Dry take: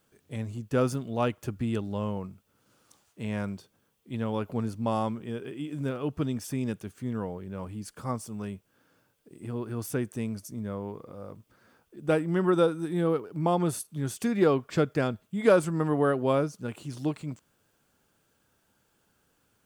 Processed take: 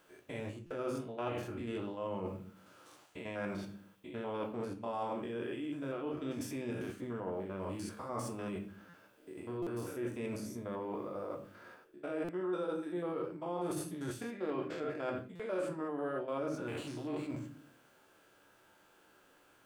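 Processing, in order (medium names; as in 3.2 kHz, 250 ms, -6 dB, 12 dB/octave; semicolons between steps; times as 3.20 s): spectrogram pixelated in time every 100 ms; reverberation RT60 0.45 s, pre-delay 3 ms, DRR 2.5 dB; de-esser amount 70%; tone controls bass -14 dB, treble -8 dB; reverse; compression 5:1, threshold -45 dBFS, peak gain reduction 23 dB; reverse; buffer glitch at 0.66/8.89/9.62/12.24/15.35 s, samples 256, times 7; trim +8 dB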